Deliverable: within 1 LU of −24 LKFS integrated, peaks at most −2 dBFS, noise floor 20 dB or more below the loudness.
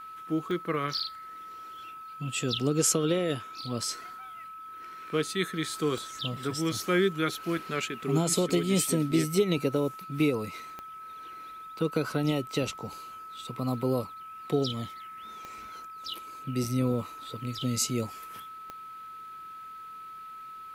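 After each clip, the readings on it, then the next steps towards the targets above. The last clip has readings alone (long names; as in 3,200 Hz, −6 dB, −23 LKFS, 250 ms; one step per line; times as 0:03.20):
number of clicks 5; interfering tone 1,300 Hz; level of the tone −41 dBFS; integrated loudness −29.5 LKFS; sample peak −12.0 dBFS; target loudness −24.0 LKFS
→ click removal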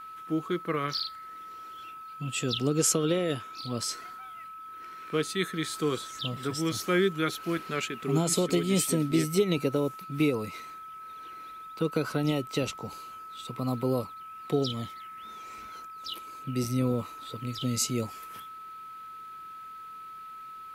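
number of clicks 0; interfering tone 1,300 Hz; level of the tone −41 dBFS
→ notch filter 1,300 Hz, Q 30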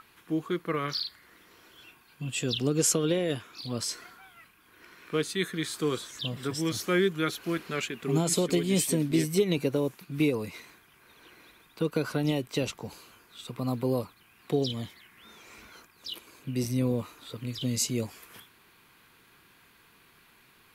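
interfering tone none found; integrated loudness −29.5 LKFS; sample peak −12.0 dBFS; target loudness −24.0 LKFS
→ level +5.5 dB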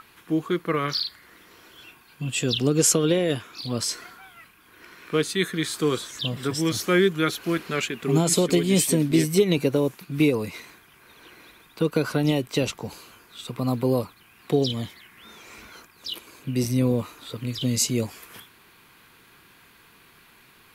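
integrated loudness −24.0 LKFS; sample peak −6.5 dBFS; background noise floor −55 dBFS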